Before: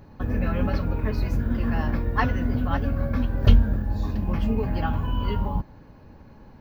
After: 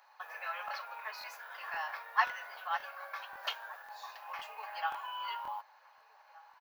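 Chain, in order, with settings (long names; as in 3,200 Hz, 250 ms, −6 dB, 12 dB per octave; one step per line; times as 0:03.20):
Butterworth high-pass 770 Hz 36 dB per octave
slap from a distant wall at 260 metres, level −19 dB
regular buffer underruns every 0.53 s, samples 1,024, repeat, from 0:00.66
level −2.5 dB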